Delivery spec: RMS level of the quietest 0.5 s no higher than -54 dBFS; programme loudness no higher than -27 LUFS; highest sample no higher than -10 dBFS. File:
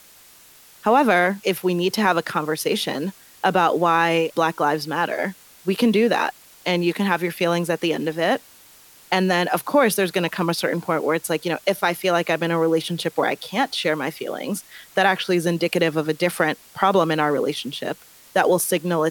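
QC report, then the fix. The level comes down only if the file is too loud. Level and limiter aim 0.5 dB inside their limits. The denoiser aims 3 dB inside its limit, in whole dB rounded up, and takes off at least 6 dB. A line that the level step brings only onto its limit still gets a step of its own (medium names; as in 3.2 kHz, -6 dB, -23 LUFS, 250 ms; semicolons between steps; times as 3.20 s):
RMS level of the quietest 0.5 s -49 dBFS: fail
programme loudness -21.5 LUFS: fail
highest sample -3.5 dBFS: fail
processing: trim -6 dB; peak limiter -10.5 dBFS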